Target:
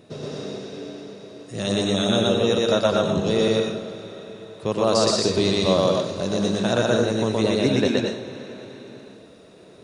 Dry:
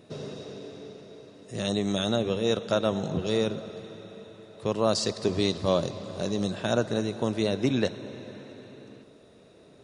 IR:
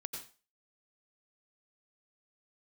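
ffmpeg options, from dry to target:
-filter_complex "[0:a]asplit=2[link_01][link_02];[1:a]atrim=start_sample=2205,lowshelf=frequency=170:gain=-9,adelay=121[link_03];[link_02][link_03]afir=irnorm=-1:irlink=0,volume=4dB[link_04];[link_01][link_04]amix=inputs=2:normalize=0,volume=3dB"

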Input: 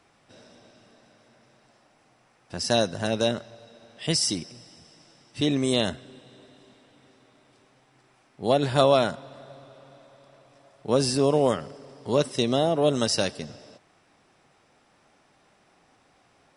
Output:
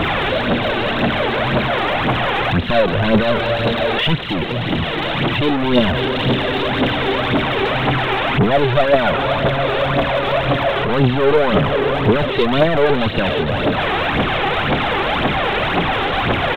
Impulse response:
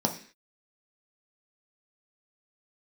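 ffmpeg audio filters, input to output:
-af "aeval=exprs='val(0)+0.5*0.126*sgn(val(0))':channel_layout=same,anlmdn=158,aresample=8000,asoftclip=type=tanh:threshold=-19.5dB,aresample=44100,aphaser=in_gain=1:out_gain=1:delay=2.7:decay=0.57:speed=1.9:type=triangular,volume=6.5dB"

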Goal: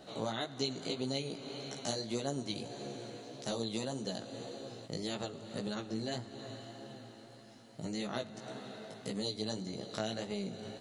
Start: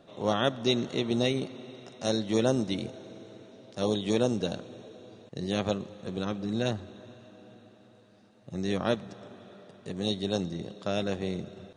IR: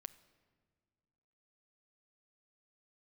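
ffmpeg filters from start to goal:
-filter_complex "[0:a]acompressor=threshold=-39dB:ratio=4,flanger=delay=15.5:depth=4.8:speed=1.6,asplit=2[link_01][link_02];[1:a]atrim=start_sample=2205,highshelf=frequency=2500:gain=11.5[link_03];[link_02][link_03]afir=irnorm=-1:irlink=0,volume=9.5dB[link_04];[link_01][link_04]amix=inputs=2:normalize=0,asetrate=48000,aresample=44100,volume=-3dB"

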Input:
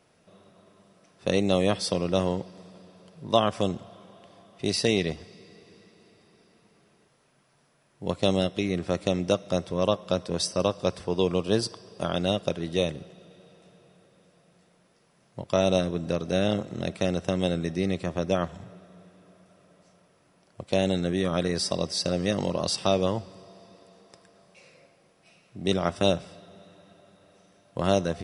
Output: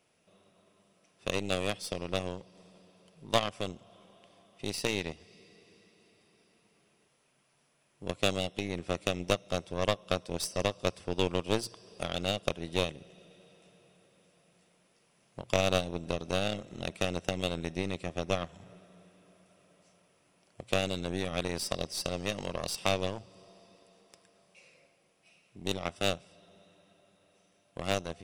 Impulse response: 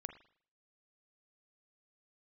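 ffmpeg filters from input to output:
-filter_complex "[0:a]bass=frequency=250:gain=-2,treble=frequency=4000:gain=-6,bandreject=frequency=60:width_type=h:width=6,bandreject=frequency=120:width_type=h:width=6,asplit=2[link_01][link_02];[link_02]acompressor=threshold=-37dB:ratio=10,volume=2dB[link_03];[link_01][link_03]amix=inputs=2:normalize=0,aeval=exprs='0.473*(cos(1*acos(clip(val(0)/0.473,-1,1)))-cos(1*PI/2))+0.0944*(cos(3*acos(clip(val(0)/0.473,-1,1)))-cos(3*PI/2))+0.0531*(cos(4*acos(clip(val(0)/0.473,-1,1)))-cos(4*PI/2))+0.00841*(cos(7*acos(clip(val(0)/0.473,-1,1)))-cos(7*PI/2))':channel_layout=same,dynaudnorm=framelen=930:gausssize=13:maxgain=4.5dB,aexciter=amount=1.1:drive=9.3:freq=2300,volume=-4.5dB"

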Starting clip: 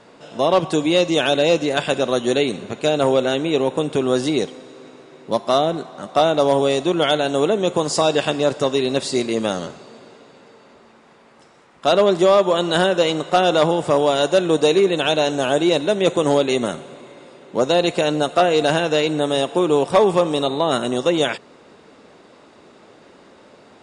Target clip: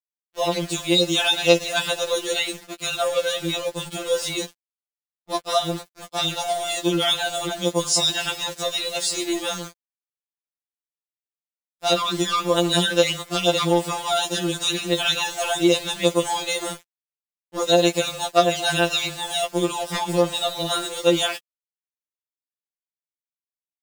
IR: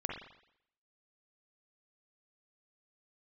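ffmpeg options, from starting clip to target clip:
-filter_complex "[0:a]acrossover=split=4300[link_01][link_02];[link_02]acontrast=31[link_03];[link_01][link_03]amix=inputs=2:normalize=0,tiltshelf=frequency=1400:gain=-4,agate=range=-33dB:threshold=-37dB:ratio=3:detection=peak,aeval=exprs='val(0)*gte(abs(val(0)),0.0376)':channel_layout=same,afftfilt=real='re*2.83*eq(mod(b,8),0)':imag='im*2.83*eq(mod(b,8),0)':win_size=2048:overlap=0.75,volume=-1dB"

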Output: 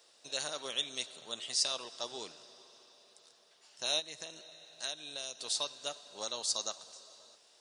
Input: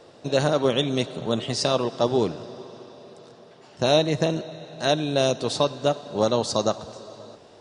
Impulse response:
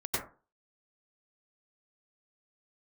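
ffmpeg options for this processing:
-filter_complex "[0:a]asplit=3[link_01][link_02][link_03];[link_01]afade=type=out:start_time=3.99:duration=0.02[link_04];[link_02]acompressor=threshold=-23dB:ratio=6,afade=type=in:start_time=3.99:duration=0.02,afade=type=out:start_time=5.39:duration=0.02[link_05];[link_03]afade=type=in:start_time=5.39:duration=0.02[link_06];[link_04][link_05][link_06]amix=inputs=3:normalize=0,aderivative"

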